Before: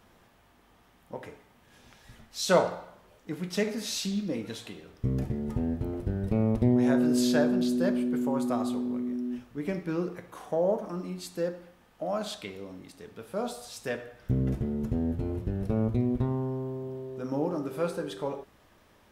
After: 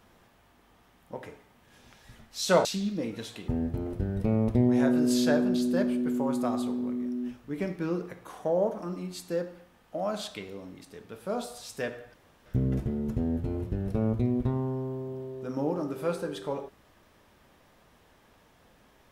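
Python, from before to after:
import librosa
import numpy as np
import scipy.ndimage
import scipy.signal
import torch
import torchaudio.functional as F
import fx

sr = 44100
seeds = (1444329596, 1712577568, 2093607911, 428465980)

y = fx.edit(x, sr, fx.cut(start_s=2.65, length_s=1.31),
    fx.cut(start_s=4.79, length_s=0.76),
    fx.insert_room_tone(at_s=14.21, length_s=0.32), tone=tone)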